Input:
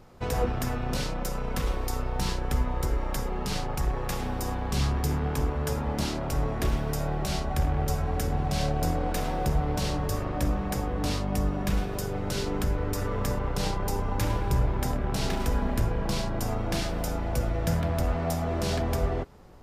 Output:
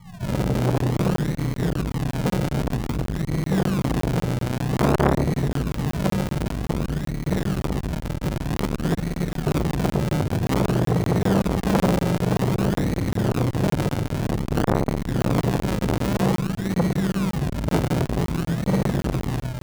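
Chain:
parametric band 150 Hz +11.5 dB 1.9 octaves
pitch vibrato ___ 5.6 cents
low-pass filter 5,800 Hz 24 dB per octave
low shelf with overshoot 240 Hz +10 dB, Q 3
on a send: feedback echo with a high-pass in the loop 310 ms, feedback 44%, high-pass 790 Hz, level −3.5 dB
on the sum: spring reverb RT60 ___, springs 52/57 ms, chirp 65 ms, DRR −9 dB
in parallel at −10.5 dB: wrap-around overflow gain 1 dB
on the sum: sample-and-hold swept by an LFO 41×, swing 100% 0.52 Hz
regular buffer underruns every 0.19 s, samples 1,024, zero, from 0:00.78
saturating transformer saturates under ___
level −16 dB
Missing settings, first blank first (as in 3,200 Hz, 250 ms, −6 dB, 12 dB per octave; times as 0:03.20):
1.5 Hz, 1.3 s, 910 Hz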